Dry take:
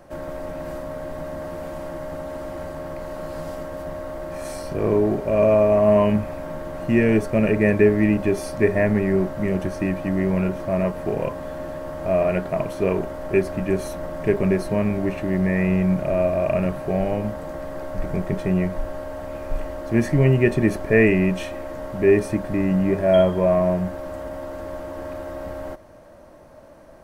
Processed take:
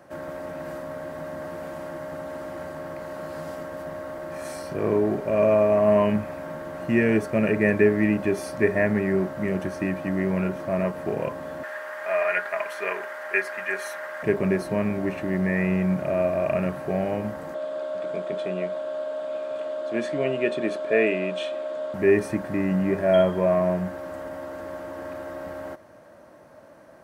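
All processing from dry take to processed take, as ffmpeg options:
-filter_complex "[0:a]asettb=1/sr,asplit=3[a][b][c];[a]atrim=end=11.634[d];[b]atrim=start=11.63:end=14.23,asetpts=PTS-STARTPTS,afade=t=in:d=0.004:c=qsin,afade=t=out:st=2.596:d=0.004:c=qsin,highpass=780,equalizer=f=1.8k:t=o:w=0.91:g=10.5,aecho=1:1:4.9:0.5,atrim=end_sample=114660[e];[c]atrim=start=14.226[f];[d][e]acrossfade=d=0.004:c1=hsin:c2=qsin[g];[g][f]acrossfade=d=0.004:c1=qsin:c2=hsin,asettb=1/sr,asplit=3[h][i][j];[h]atrim=end=17.544[k];[i]atrim=start=17.54:end=21.94,asetpts=PTS-STARTPTS,afade=t=in:d=0.004:c=qsin,afade=t=out:st=4.396:d=0.004:c=qsin,highpass=340,equalizer=f=380:t=q:w=4:g=-3,equalizer=f=640:t=q:w=4:g=10,equalizer=f=920:t=q:w=4:g=-4,equalizer=f=1.9k:t=q:w=4:g=-9,equalizer=f=3.5k:t=q:w=4:g=10,equalizer=f=5.8k:t=q:w=4:g=-7,lowpass=f=8.2k:w=0.5412,lowpass=f=8.2k:w=1.3066,bandreject=f=740:w=5.1[l];[j]atrim=start=21.936[m];[k][l]acrossfade=d=0.004:c1=hsin:c2=qsin[n];[n][m]acrossfade=d=0.004:c1=qsin:c2=hsin,highpass=110,equalizer=f=1.6k:t=o:w=0.83:g=4.5,volume=-3dB"

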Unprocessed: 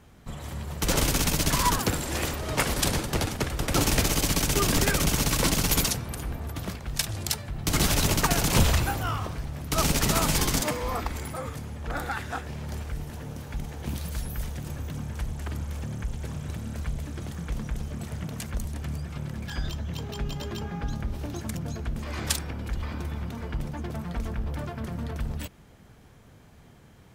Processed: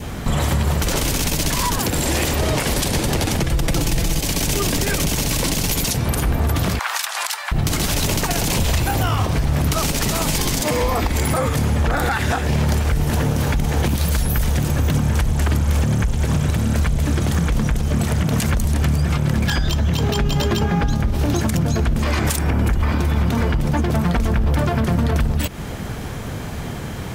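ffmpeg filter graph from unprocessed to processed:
-filter_complex "[0:a]asettb=1/sr,asplit=3[a][b][c];[a]atrim=end=3.394[d];[b]atrim=start=3.39:end=4.2,asetpts=PTS-STARTPTS,afade=t=in:d=0.004:c=qsin,afade=t=out:st=0.806:d=0.004:c=qsin,lowshelf=f=160:g=9.5,aecho=1:1:6:0.45,atrim=end_sample=35721[e];[c]atrim=start=4.196[f];[d][e]acrossfade=d=0.004:c1=hsin:c2=qsin[g];[g][f]acrossfade=d=0.004:c1=qsin:c2=hsin,asettb=1/sr,asplit=3[h][i][j];[h]atrim=end=6.794[k];[i]atrim=start=6.79:end=7.52,asetpts=PTS-STARTPTS,afade=t=in:d=0.004:c=qsin,afade=t=out:st=0.726:d=0.004:c=qsin,highpass=f=860:w=0.5412,highpass=f=860:w=1.3066,equalizer=f=1.2k:t=o:w=1.8:g=8[l];[j]atrim=start=7.516[m];[k][l]acrossfade=d=0.004:c1=hsin:c2=qsin[n];[n][m]acrossfade=d=0.004:c1=qsin:c2=hsin,asettb=1/sr,asplit=3[o][p][q];[o]atrim=end=22.194[r];[p]atrim=start=22.19:end=22.92,asetpts=PTS-STARTPTS,afade=t=in:d=0.004:c=qsin,afade=t=out:st=0.726:d=0.004:c=qsin,asoftclip=type=hard:threshold=-18dB,equalizer=f=4.1k:t=o:w=1.2:g=-7,bandreject=f=510:w=15[s];[q]atrim=start=22.916[t];[r][s]acrossfade=d=0.004:c1=hsin:c2=qsin[u];[u][t]acrossfade=d=0.004:c1=qsin:c2=hsin,adynamicequalizer=threshold=0.00501:dfrequency=1300:dqfactor=2.4:tfrequency=1300:tqfactor=2.4:attack=5:release=100:ratio=0.375:range=3:mode=cutabove:tftype=bell,acompressor=threshold=-39dB:ratio=6,alimiter=level_in=34dB:limit=-1dB:release=50:level=0:latency=1,volume=-9dB"

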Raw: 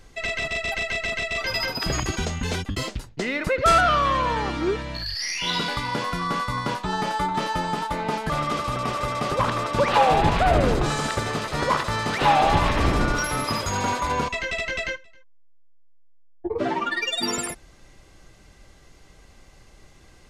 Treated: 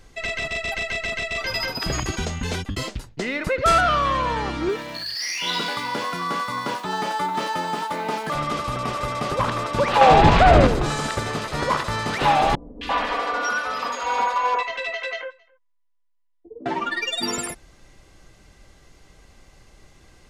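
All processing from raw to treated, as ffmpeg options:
-filter_complex "[0:a]asettb=1/sr,asplit=3[a][b][c];[a]atrim=end=4.694[d];[b]atrim=start=4.69:end=8.35,asetpts=PTS-STARTPTS,afade=t=in:d=0.004:c=qsin,afade=t=out:st=3.656:d=0.004:c=qsin,aeval=exprs='val(0)+0.5*0.0106*sgn(val(0))':c=same,highpass=220[e];[c]atrim=start=8.346[f];[d][e]acrossfade=d=0.004:c1=hsin:c2=qsin[g];[g][f]acrossfade=d=0.004:c1=qsin:c2=hsin,asettb=1/sr,asplit=3[h][i][j];[h]atrim=end=10.014[k];[i]atrim=start=10.01:end=10.67,asetpts=PTS-STARTPTS,afade=t=in:d=0.004:c=qsin,afade=t=out:st=0.656:d=0.004:c=qsin,lowpass=6.8k,acontrast=78[l];[j]atrim=start=10.666[m];[k][l]acrossfade=d=0.004:c1=hsin:c2=qsin[n];[n][m]acrossfade=d=0.004:c1=qsin:c2=hsin,asettb=1/sr,asplit=3[o][p][q];[o]atrim=end=12.554[r];[p]atrim=start=12.55:end=16.66,asetpts=PTS-STARTPTS,afade=t=in:d=0.004:c=qsin,afade=t=out:st=4.106:d=0.004:c=qsin,acrossover=split=380 4300:gain=0.0708 1 0.178[s][t][u];[s][t][u]amix=inputs=3:normalize=0,aecho=1:1:4.1:0.93,atrim=end_sample=181251,acrossover=split=330|2100[v][w][x];[x]adelay=260[y];[w]adelay=340[z];[v][z][y]amix=inputs=3:normalize=0,atrim=end_sample=181251[aa];[q]atrim=start=16.656[ab];[r][aa]acrossfade=d=0.004:c1=hsin:c2=qsin[ac];[ac][ab]acrossfade=d=0.004:c1=qsin:c2=hsin"

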